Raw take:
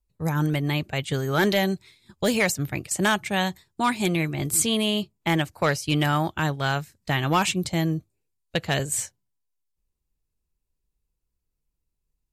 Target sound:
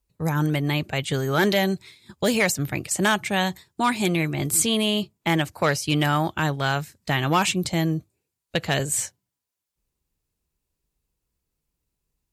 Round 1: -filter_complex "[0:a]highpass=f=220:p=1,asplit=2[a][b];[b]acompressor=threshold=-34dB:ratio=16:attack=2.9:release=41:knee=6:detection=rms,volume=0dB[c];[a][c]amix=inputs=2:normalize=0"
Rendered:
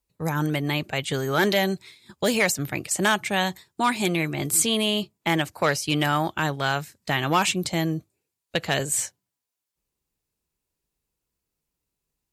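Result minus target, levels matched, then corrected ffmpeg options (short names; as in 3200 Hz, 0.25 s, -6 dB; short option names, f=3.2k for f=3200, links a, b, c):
125 Hz band -3.0 dB
-filter_complex "[0:a]highpass=f=80:p=1,asplit=2[a][b];[b]acompressor=threshold=-34dB:ratio=16:attack=2.9:release=41:knee=6:detection=rms,volume=0dB[c];[a][c]amix=inputs=2:normalize=0"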